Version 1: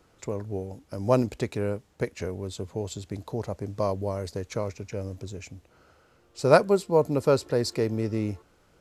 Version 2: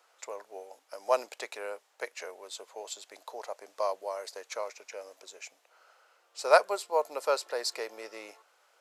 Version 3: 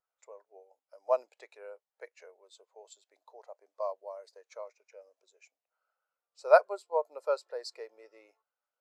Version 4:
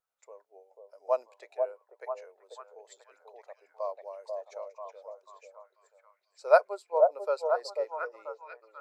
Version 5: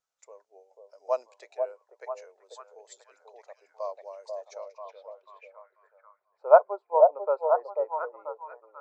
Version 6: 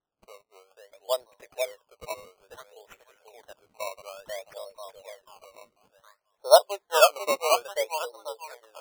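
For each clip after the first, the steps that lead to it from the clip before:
high-pass 610 Hz 24 dB/octave
spectral contrast expander 1.5:1
repeats whose band climbs or falls 490 ms, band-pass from 570 Hz, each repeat 0.7 oct, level -2 dB
low-pass sweep 6.5 kHz -> 950 Hz, 4.44–6.41 s
decimation with a swept rate 18×, swing 100% 0.58 Hz

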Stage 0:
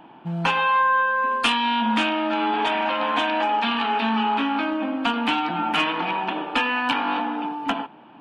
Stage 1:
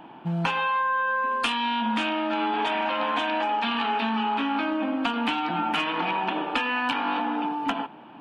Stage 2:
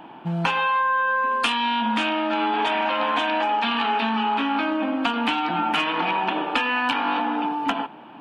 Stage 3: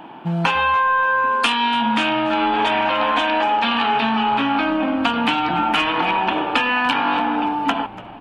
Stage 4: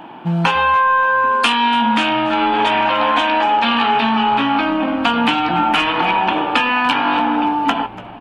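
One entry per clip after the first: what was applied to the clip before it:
compression, threshold -24 dBFS, peak gain reduction 8 dB; trim +1.5 dB
bass shelf 220 Hz -3.5 dB; trim +3.5 dB
frequency-shifting echo 289 ms, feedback 48%, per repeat -93 Hz, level -18.5 dB; trim +4 dB
doubling 17 ms -12 dB; trim +2.5 dB

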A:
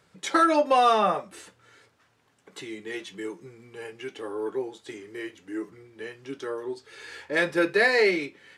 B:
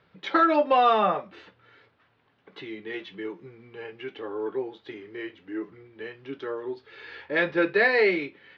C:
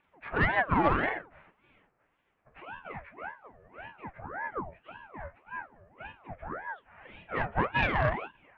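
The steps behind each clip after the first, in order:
inverse Chebyshev low-pass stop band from 8.8 kHz, stop band 50 dB
frequency axis rescaled in octaves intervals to 80%; Chebyshev shaper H 3 -21 dB, 4 -21 dB, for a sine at -9.5 dBFS; ring modulator with a swept carrier 780 Hz, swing 70%, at 1.8 Hz

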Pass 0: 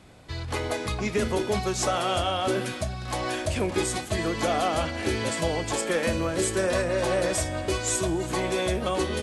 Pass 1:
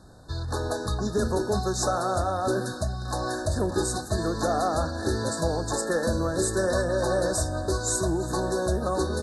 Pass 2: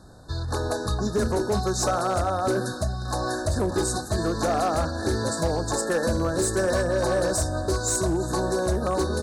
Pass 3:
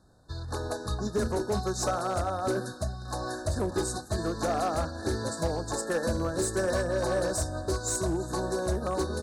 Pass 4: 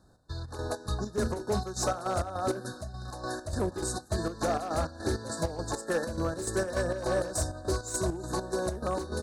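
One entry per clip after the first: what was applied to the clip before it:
FFT band-reject 1.8–3.6 kHz; bass shelf 66 Hz +7 dB
hard clipper -19.5 dBFS, distortion -20 dB; trim +2 dB
upward expansion 1.5:1, over -39 dBFS; trim -3.5 dB
square tremolo 3.4 Hz, depth 60%, duty 55%

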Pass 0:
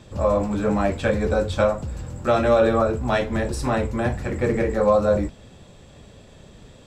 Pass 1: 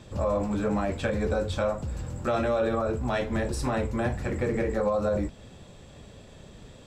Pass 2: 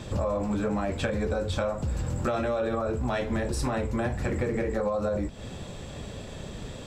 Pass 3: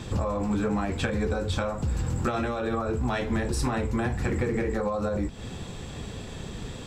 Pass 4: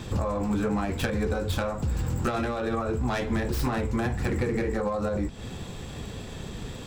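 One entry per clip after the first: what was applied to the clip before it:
in parallel at -1 dB: compression, threshold -27 dBFS, peak gain reduction 13.5 dB; on the sum: peak limiter -10.5 dBFS, peak gain reduction 5.5 dB; trim -7 dB
compression 5:1, threshold -35 dBFS, peak gain reduction 12 dB; trim +9 dB
peaking EQ 590 Hz -10 dB 0.24 oct; trim +2 dB
tracing distortion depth 0.14 ms

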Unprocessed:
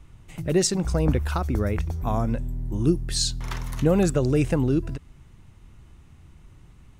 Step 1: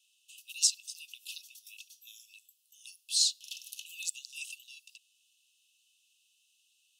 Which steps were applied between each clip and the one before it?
Chebyshev high-pass 2.6 kHz, order 10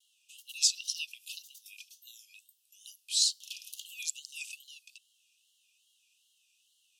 frequency shift +27 Hz; wow and flutter 130 cents; time-frequency box 0.76–1.06 s, 2.3–6.3 kHz +12 dB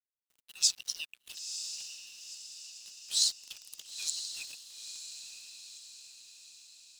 crossover distortion -45.5 dBFS; echo that smears into a reverb 963 ms, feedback 52%, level -8 dB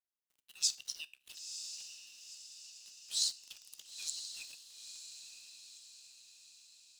feedback comb 67 Hz, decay 0.35 s, harmonics all, mix 40%; trim -2.5 dB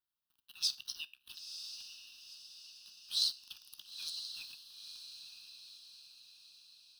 static phaser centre 2.1 kHz, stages 6; trim +4 dB

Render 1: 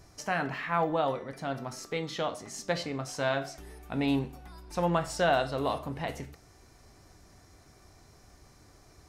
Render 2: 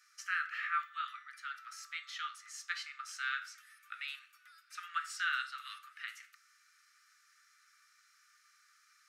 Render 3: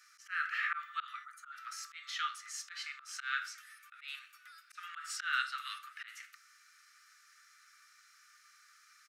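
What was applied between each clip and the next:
Chebyshev high-pass 1.2 kHz, order 10; treble shelf 2 kHz -11.5 dB; trim +4.5 dB
echo from a far wall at 22 m, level -28 dB; time-frequency box 1.25–1.53 s, 1.5–6 kHz -13 dB; slow attack 173 ms; trim +4.5 dB

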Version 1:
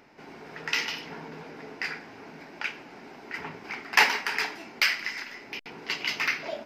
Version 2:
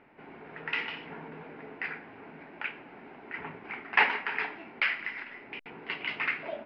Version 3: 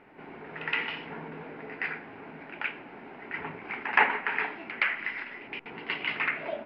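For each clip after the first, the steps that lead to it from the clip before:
inverse Chebyshev low-pass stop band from 8.6 kHz, stop band 60 dB; trim -2.5 dB
low-pass that closes with the level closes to 2 kHz, closed at -26 dBFS; reverse echo 119 ms -14 dB; trim +3 dB

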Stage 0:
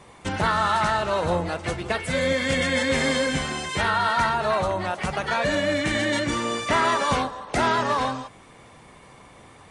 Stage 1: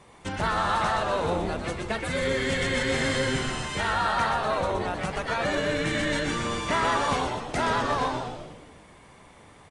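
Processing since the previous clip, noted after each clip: frequency-shifting echo 123 ms, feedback 55%, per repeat -140 Hz, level -5 dB; trim -4.5 dB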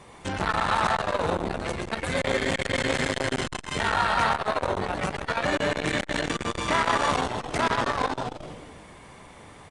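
transformer saturation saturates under 1.1 kHz; trim +4.5 dB

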